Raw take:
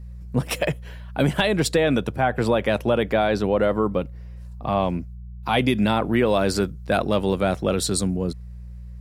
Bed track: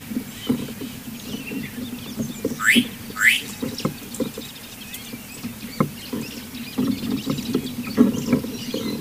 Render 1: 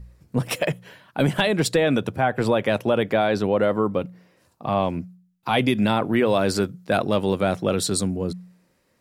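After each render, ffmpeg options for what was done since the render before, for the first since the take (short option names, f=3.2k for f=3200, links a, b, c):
-af "bandreject=f=60:t=h:w=4,bandreject=f=120:t=h:w=4,bandreject=f=180:t=h:w=4"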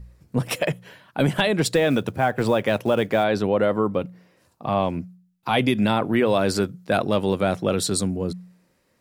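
-filter_complex "[0:a]asettb=1/sr,asplit=3[a][b][c];[a]atrim=end=1.684[d];[b]atrim=start=1.68:end=3.24,asetpts=PTS-STARTPTS,afade=t=in:d=0.004:c=qsin,afade=t=out:st=1.556:d=0.004:c=qsin,acrusher=bits=8:mode=log:mix=0:aa=0.000001[e];[c]atrim=start=3.236[f];[d][e]acrossfade=d=0.004:c1=hsin:c2=qsin[g];[g][f]acrossfade=d=0.004:c1=qsin:c2=hsin"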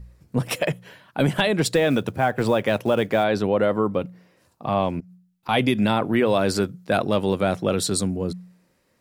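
-filter_complex "[0:a]asettb=1/sr,asplit=3[a][b][c];[a]atrim=end=5.004[d];[b]atrim=start=5:end=5.49,asetpts=PTS-STARTPTS,afade=t=in:d=0.004:c=qsin,afade=t=out:st=0.486:d=0.004:c=qsin,acompressor=threshold=-42dB:ratio=6:attack=3.2:release=140:knee=1:detection=peak[e];[c]atrim=start=5.486[f];[d][e]acrossfade=d=0.004:c1=hsin:c2=qsin[g];[g][f]acrossfade=d=0.004:c1=qsin:c2=hsin"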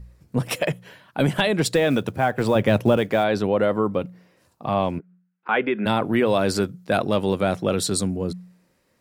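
-filter_complex "[0:a]asettb=1/sr,asplit=3[a][b][c];[a]atrim=end=2.554[d];[b]atrim=start=2.55:end=2.97,asetpts=PTS-STARTPTS,afade=t=in:d=0.004:c=qsin,afade=t=out:st=0.416:d=0.004:c=qsin,lowshelf=f=240:g=11.5[e];[c]atrim=start=2.966[f];[d][e]acrossfade=d=0.004:c1=hsin:c2=qsin[g];[g][f]acrossfade=d=0.004:c1=qsin:c2=hsin,asplit=3[h][i][j];[h]afade=t=out:st=4.98:d=0.02[k];[i]highpass=f=210:w=0.5412,highpass=f=210:w=1.3066,equalizer=f=250:t=q:w=4:g=-7,equalizer=f=420:t=q:w=4:g=4,equalizer=f=690:t=q:w=4:g=-5,equalizer=f=1.5k:t=q:w=4:g=9,lowpass=f=2.5k:w=0.5412,lowpass=f=2.5k:w=1.3066,afade=t=in:st=4.98:d=0.02,afade=t=out:st=5.85:d=0.02[l];[j]afade=t=in:st=5.85:d=0.02[m];[k][l][m]amix=inputs=3:normalize=0"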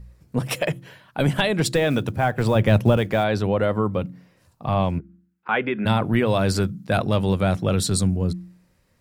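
-af "bandreject=f=67.55:t=h:w=4,bandreject=f=135.1:t=h:w=4,bandreject=f=202.65:t=h:w=4,bandreject=f=270.2:t=h:w=4,bandreject=f=337.75:t=h:w=4,asubboost=boost=4:cutoff=150"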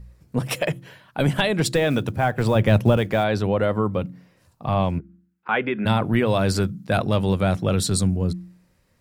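-af anull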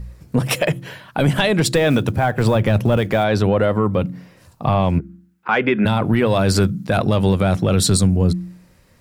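-filter_complex "[0:a]asplit=2[a][b];[b]acontrast=84,volume=0dB[c];[a][c]amix=inputs=2:normalize=0,alimiter=limit=-7.5dB:level=0:latency=1:release=209"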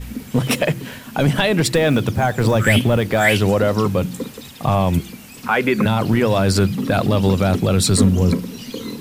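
-filter_complex "[1:a]volume=-2.5dB[a];[0:a][a]amix=inputs=2:normalize=0"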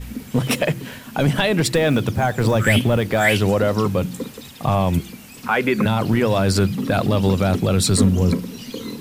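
-af "volume=-1.5dB"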